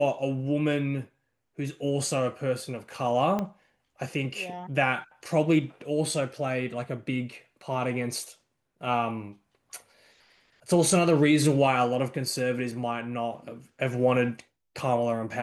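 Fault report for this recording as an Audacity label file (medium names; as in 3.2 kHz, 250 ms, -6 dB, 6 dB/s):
3.390000	3.390000	pop -17 dBFS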